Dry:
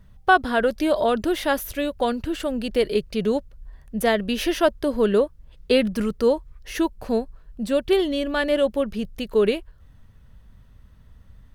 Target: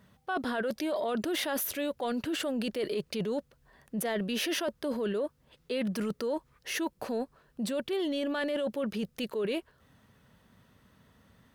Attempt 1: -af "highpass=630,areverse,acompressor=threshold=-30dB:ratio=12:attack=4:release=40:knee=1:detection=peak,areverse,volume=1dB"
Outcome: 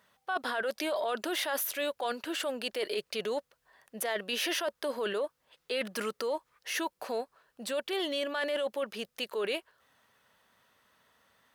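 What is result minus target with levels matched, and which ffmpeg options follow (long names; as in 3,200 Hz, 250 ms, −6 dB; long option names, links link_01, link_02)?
250 Hz band −7.5 dB
-af "highpass=200,areverse,acompressor=threshold=-30dB:ratio=12:attack=4:release=40:knee=1:detection=peak,areverse,volume=1dB"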